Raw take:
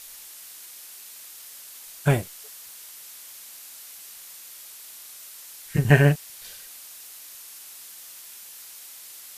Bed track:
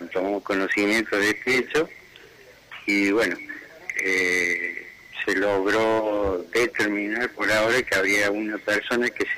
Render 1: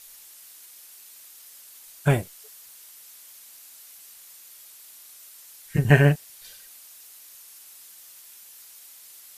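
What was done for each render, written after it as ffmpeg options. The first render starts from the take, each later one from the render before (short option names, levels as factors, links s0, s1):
-af "afftdn=nr=6:nf=-44"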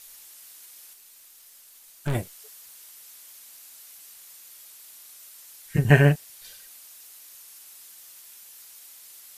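-filter_complex "[0:a]asettb=1/sr,asplit=3[s0][s1][s2];[s0]atrim=end=0.934[s3];[s1]atrim=start=0.93:end=2.15,asetpts=PTS-STARTPTS,afade=t=in:d=0.004:c=qsin,afade=t=out:st=1.216:d=0.004:c=qsin,aeval=exprs='(tanh(14.1*val(0)+0.7)-tanh(0.7))/14.1':c=same[s4];[s2]atrim=start=2.146[s5];[s3][s4]acrossfade=d=0.004:c1=hsin:c2=qsin[s6];[s6][s5]acrossfade=d=0.004:c1=qsin:c2=hsin"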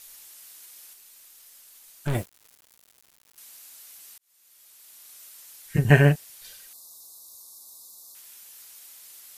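-filter_complex "[0:a]asettb=1/sr,asplit=3[s0][s1][s2];[s0]atrim=end=2.084[s3];[s1]atrim=start=2.08:end=3.38,asetpts=PTS-STARTPTS,afade=t=in:d=0.004:c=qsin,afade=t=out:st=1.296:d=0.004:c=qsin,aeval=exprs='val(0)*gte(abs(val(0)),0.0112)':c=same[s4];[s2]atrim=start=3.376[s5];[s3][s4]acrossfade=d=0.004:c1=hsin:c2=qsin[s6];[s6][s5]acrossfade=d=0.004:c1=qsin:c2=hsin,asettb=1/sr,asplit=3[s7][s8][s9];[s7]atrim=end=6.734[s10];[s8]atrim=start=6.73:end=8.15,asetpts=PTS-STARTPTS,afade=t=in:d=0.004:c=qsin,afade=t=out:st=1.416:d=0.004:c=qsin,asuperstop=centerf=2100:order=20:qfactor=0.86[s11];[s9]atrim=start=8.146[s12];[s10][s11]acrossfade=d=0.004:c1=hsin:c2=qsin[s13];[s13][s12]acrossfade=d=0.004:c1=qsin:c2=hsin,asplit=2[s14][s15];[s14]atrim=end=4.18,asetpts=PTS-STARTPTS,afade=t=out:st=4.176:d=0.004:c=hsin[s16];[s15]atrim=start=4.18,asetpts=PTS-STARTPTS,afade=t=in:d=1[s17];[s16][s17]concat=n=2:v=0:a=1"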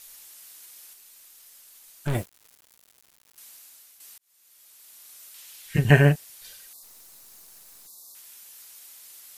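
-filter_complex "[0:a]asettb=1/sr,asplit=3[s0][s1][s2];[s0]atrim=end=5.344[s3];[s1]atrim=start=5.34:end=5.91,asetpts=PTS-STARTPTS,afade=t=in:d=0.004:c=qsin,afade=t=out:st=0.566:d=0.004:c=qsin,equalizer=f=3000:w=1:g=7.5[s4];[s2]atrim=start=5.906[s5];[s3][s4]acrossfade=d=0.004:c1=hsin:c2=qsin[s6];[s6][s5]acrossfade=d=0.004:c1=qsin:c2=hsin,asplit=3[s7][s8][s9];[s7]afade=t=out:st=6.82:d=0.02[s10];[s8]aeval=exprs='clip(val(0),-1,0.00211)':c=same,afade=t=in:st=6.82:d=0.02,afade=t=out:st=7.86:d=0.02[s11];[s9]afade=t=in:st=7.86:d=0.02[s12];[s10][s11][s12]amix=inputs=3:normalize=0,asplit=2[s13][s14];[s13]atrim=end=4,asetpts=PTS-STARTPTS,afade=t=out:st=3.47:d=0.53:silence=0.375837[s15];[s14]atrim=start=4,asetpts=PTS-STARTPTS,afade=t=in:d=0.004:c=hsin:silence=0.375837[s16];[s15][s16]concat=n=2:v=0:a=1"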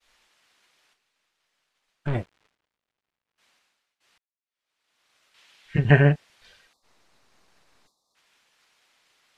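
-af "lowpass=2800,agate=range=0.0224:threshold=0.00141:ratio=3:detection=peak"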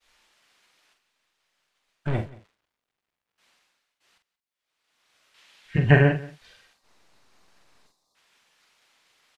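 -filter_complex "[0:a]asplit=2[s0][s1];[s1]adelay=45,volume=0.447[s2];[s0][s2]amix=inputs=2:normalize=0,aecho=1:1:179:0.0944"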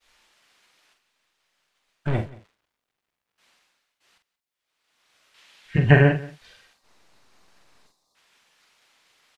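-af "volume=1.26,alimiter=limit=0.794:level=0:latency=1"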